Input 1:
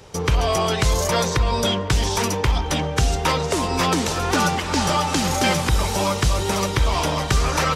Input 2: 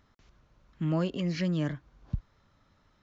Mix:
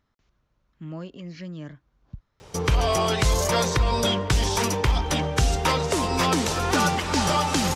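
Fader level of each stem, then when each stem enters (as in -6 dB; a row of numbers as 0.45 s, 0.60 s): -2.0 dB, -7.5 dB; 2.40 s, 0.00 s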